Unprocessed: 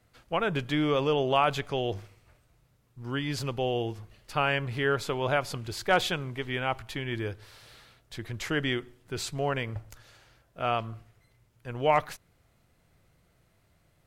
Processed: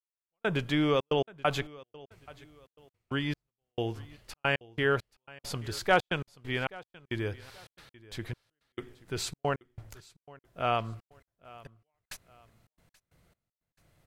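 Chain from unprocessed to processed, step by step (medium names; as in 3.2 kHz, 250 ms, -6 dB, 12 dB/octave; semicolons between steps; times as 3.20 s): trance gate "....xxxxx.x..xx" 135 bpm -60 dB; feedback delay 830 ms, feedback 32%, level -21.5 dB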